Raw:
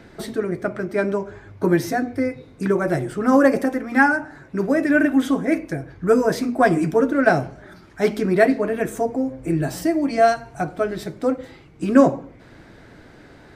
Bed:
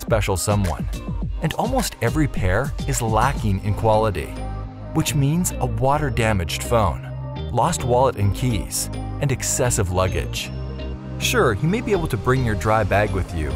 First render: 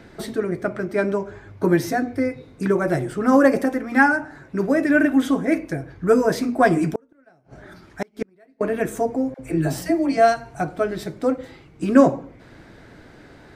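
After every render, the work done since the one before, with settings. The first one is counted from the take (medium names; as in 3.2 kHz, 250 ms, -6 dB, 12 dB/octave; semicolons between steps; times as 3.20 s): 6.86–8.61 s: inverted gate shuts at -13 dBFS, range -38 dB; 9.34–10.17 s: phase dispersion lows, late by 56 ms, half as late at 610 Hz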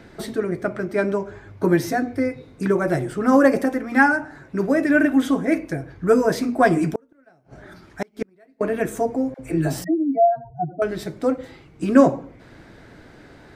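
9.84–10.82 s: spectral contrast enhancement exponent 3.7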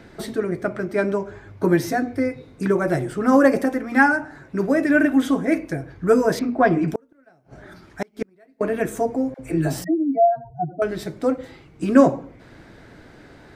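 6.39–6.88 s: distance through air 200 m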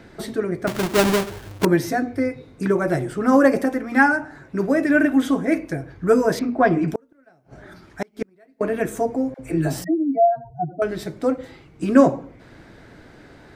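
0.67–1.65 s: square wave that keeps the level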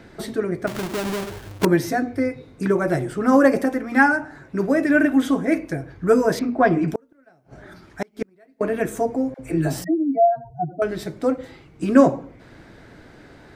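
0.66–1.23 s: compression, threshold -24 dBFS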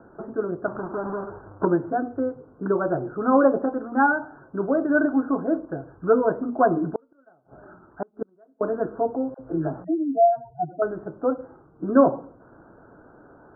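steep low-pass 1.5 kHz 96 dB/octave; bass shelf 210 Hz -11.5 dB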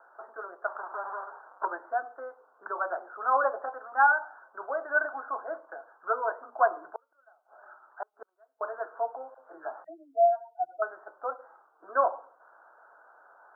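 high-pass 740 Hz 24 dB/octave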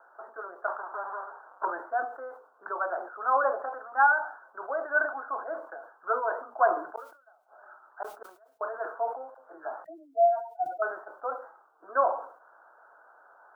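decay stretcher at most 110 dB/s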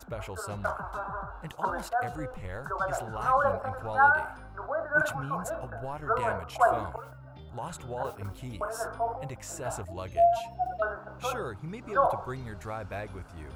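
add bed -19 dB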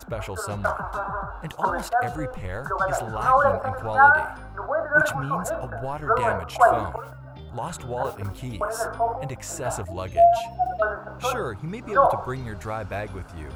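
trim +6.5 dB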